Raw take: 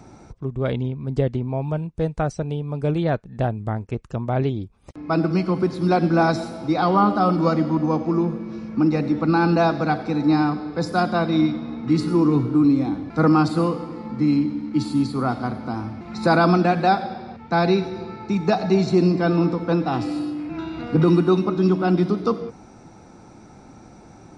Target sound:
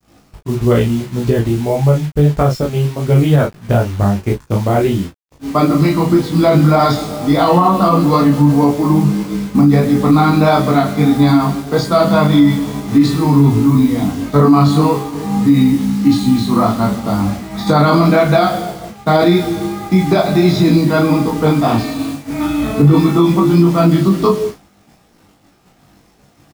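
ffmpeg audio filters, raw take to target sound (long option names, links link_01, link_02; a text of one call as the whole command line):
ffmpeg -i in.wav -filter_complex "[0:a]asetrate=40517,aresample=44100,adynamicequalizer=threshold=0.0355:dfrequency=500:dqfactor=0.8:tfrequency=500:tqfactor=0.8:attack=5:release=100:ratio=0.375:range=1.5:mode=cutabove:tftype=bell,asplit=2[link_01][link_02];[link_02]acompressor=threshold=-32dB:ratio=8,volume=-3dB[link_03];[link_01][link_03]amix=inputs=2:normalize=0,acrusher=bits=6:mix=0:aa=0.000001,flanger=delay=16:depth=4.3:speed=1.6,agate=range=-33dB:threshold=-29dB:ratio=3:detection=peak,aecho=1:1:21|35:0.596|0.596,alimiter=level_in=11.5dB:limit=-1dB:release=50:level=0:latency=1,volume=-1dB" out.wav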